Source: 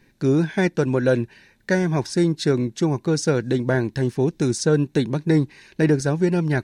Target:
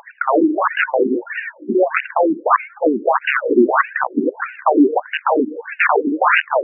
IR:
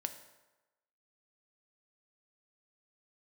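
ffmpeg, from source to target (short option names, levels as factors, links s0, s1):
-filter_complex "[0:a]lowpass=6900,asplit=2[s0][s1];[1:a]atrim=start_sample=2205[s2];[s1][s2]afir=irnorm=-1:irlink=0,volume=0.211[s3];[s0][s3]amix=inputs=2:normalize=0,aeval=exprs='val(0)+0.00631*(sin(2*PI*60*n/s)+sin(2*PI*2*60*n/s)/2+sin(2*PI*3*60*n/s)/3+sin(2*PI*4*60*n/s)/4+sin(2*PI*5*60*n/s)/5)':c=same,aphaser=in_gain=1:out_gain=1:delay=3.4:decay=0.73:speed=0.95:type=triangular,aeval=exprs='(mod(3.98*val(0)+1,2)-1)/3.98':c=same,alimiter=level_in=12.6:limit=0.891:release=50:level=0:latency=1,afftfilt=real='re*between(b*sr/1024,290*pow(2100/290,0.5+0.5*sin(2*PI*1.6*pts/sr))/1.41,290*pow(2100/290,0.5+0.5*sin(2*PI*1.6*pts/sr))*1.41)':imag='im*between(b*sr/1024,290*pow(2100/290,0.5+0.5*sin(2*PI*1.6*pts/sr))/1.41,290*pow(2100/290,0.5+0.5*sin(2*PI*1.6*pts/sr))*1.41)':win_size=1024:overlap=0.75,volume=0.891"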